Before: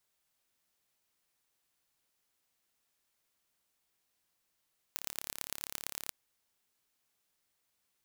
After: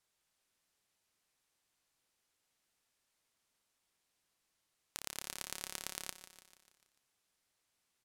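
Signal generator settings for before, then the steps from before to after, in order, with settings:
impulse train 35.3 per second, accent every 4, −8 dBFS 1.16 s
low-pass filter 11,000 Hz 12 dB per octave
on a send: repeating echo 147 ms, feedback 57%, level −12.5 dB

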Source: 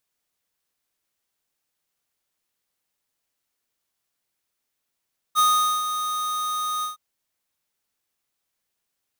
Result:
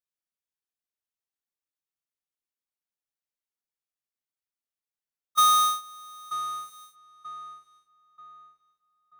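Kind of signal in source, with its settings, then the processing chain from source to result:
note with an ADSR envelope square 1,240 Hz, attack 39 ms, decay 435 ms, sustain −9.5 dB, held 1.48 s, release 135 ms −17 dBFS
noise gate −24 dBFS, range −18 dB
feedback echo with a low-pass in the loop 935 ms, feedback 41%, low-pass 2,300 Hz, level −9 dB

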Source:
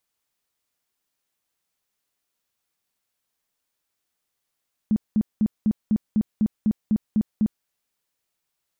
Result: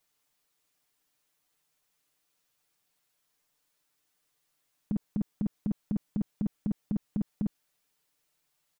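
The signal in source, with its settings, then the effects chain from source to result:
tone bursts 214 Hz, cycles 11, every 0.25 s, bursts 11, −16 dBFS
comb filter 6.7 ms, depth 95%
brickwall limiter −22 dBFS

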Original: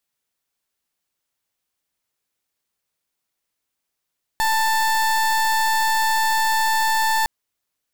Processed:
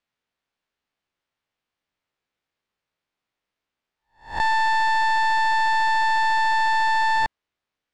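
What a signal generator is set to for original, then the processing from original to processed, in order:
pulse wave 886 Hz, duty 30% −19 dBFS 2.86 s
peak hold with a rise ahead of every peak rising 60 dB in 0.36 s
low-pass filter 3,300 Hz 12 dB per octave

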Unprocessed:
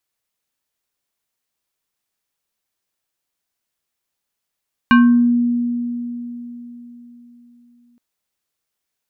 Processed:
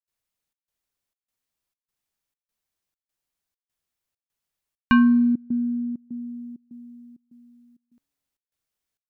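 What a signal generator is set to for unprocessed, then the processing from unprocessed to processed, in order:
two-operator FM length 3.07 s, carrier 240 Hz, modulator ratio 5.5, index 1.2, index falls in 0.48 s exponential, decay 3.98 s, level −6 dB
low-shelf EQ 120 Hz +9 dB
tuned comb filter 140 Hz, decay 1.8 s, mix 50%
gate pattern ".xxxxxx." 199 BPM −24 dB

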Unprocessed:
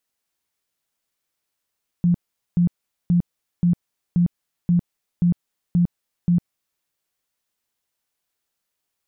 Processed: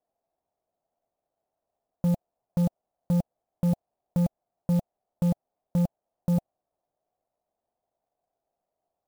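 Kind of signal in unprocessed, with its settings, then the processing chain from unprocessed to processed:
tone bursts 174 Hz, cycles 18, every 0.53 s, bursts 9, −13.5 dBFS
low-pass with resonance 690 Hz, resonance Q 6.1
soft clipping −20 dBFS
converter with an unsteady clock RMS 0.035 ms

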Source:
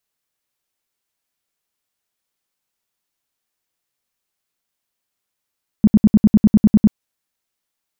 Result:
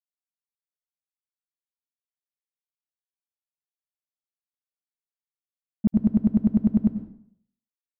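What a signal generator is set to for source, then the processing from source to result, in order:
tone bursts 212 Hz, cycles 7, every 0.10 s, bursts 11, −5.5 dBFS
downward expander −4 dBFS
dense smooth reverb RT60 0.62 s, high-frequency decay 0.85×, pre-delay 80 ms, DRR 9.5 dB

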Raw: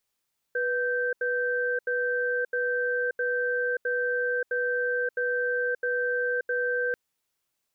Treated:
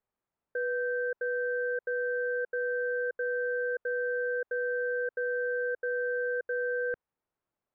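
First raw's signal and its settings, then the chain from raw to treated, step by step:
tone pair in a cadence 491 Hz, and 1,560 Hz, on 0.58 s, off 0.08 s, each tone −27 dBFS 6.39 s
dynamic equaliser 230 Hz, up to −5 dB, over −47 dBFS, Q 0.71
low-pass filter 1,200 Hz 12 dB per octave

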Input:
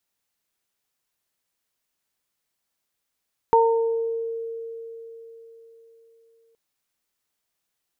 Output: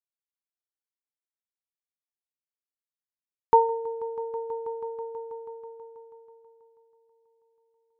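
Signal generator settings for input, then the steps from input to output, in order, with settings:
harmonic partials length 3.02 s, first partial 457 Hz, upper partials 3 dB, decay 4.14 s, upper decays 0.79 s, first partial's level −15.5 dB
parametric band 1,100 Hz +3.5 dB 1.1 octaves
echo that builds up and dies away 162 ms, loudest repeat 5, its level −13.5 dB
expander for the loud parts 2.5 to 1, over −33 dBFS

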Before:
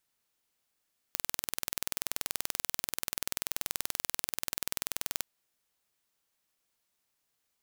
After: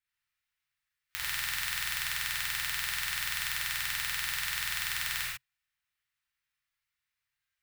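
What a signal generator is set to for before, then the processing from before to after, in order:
impulse train 20.7 per second, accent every 0, −4 dBFS 4.09 s
noise reduction from a noise print of the clip's start 11 dB
drawn EQ curve 130 Hz 0 dB, 300 Hz −29 dB, 1,900 Hz +6 dB, 6,700 Hz −8 dB
reverb whose tail is shaped and stops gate 170 ms flat, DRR −7.5 dB

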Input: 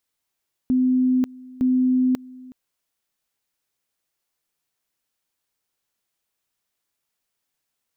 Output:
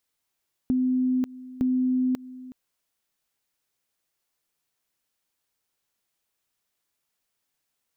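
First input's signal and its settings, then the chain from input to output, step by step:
tone at two levels in turn 255 Hz −15.5 dBFS, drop 22.5 dB, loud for 0.54 s, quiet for 0.37 s, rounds 2
downward compressor, threshold −22 dBFS

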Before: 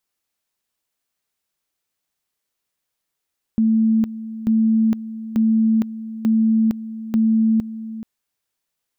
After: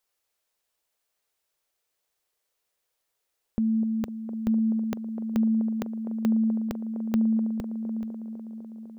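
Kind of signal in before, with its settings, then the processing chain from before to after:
tone at two levels in turn 222 Hz −13 dBFS, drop 14.5 dB, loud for 0.46 s, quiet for 0.43 s, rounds 5
octave-band graphic EQ 125/250/500 Hz −5/−8/+5 dB
on a send: delay with a band-pass on its return 251 ms, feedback 77%, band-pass 430 Hz, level −7.5 dB

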